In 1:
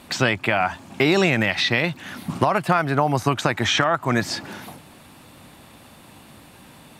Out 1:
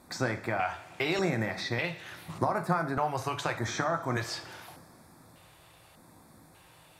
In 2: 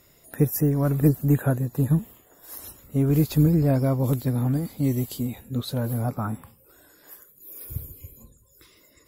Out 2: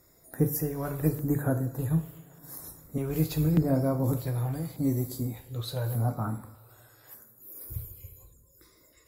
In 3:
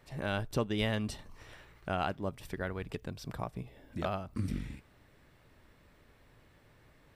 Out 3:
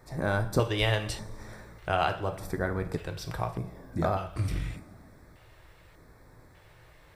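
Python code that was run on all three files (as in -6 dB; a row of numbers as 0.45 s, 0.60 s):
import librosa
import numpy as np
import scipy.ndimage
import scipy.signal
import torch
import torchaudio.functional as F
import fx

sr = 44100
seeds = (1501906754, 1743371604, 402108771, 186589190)

y = fx.rev_double_slope(x, sr, seeds[0], early_s=0.44, late_s=2.9, knee_db=-19, drr_db=5.5)
y = fx.filter_lfo_notch(y, sr, shape='square', hz=0.84, low_hz=230.0, high_hz=2900.0, q=0.96)
y = y * 10.0 ** (-12 / 20.0) / np.max(np.abs(y))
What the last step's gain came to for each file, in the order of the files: -9.5 dB, -4.0 dB, +6.5 dB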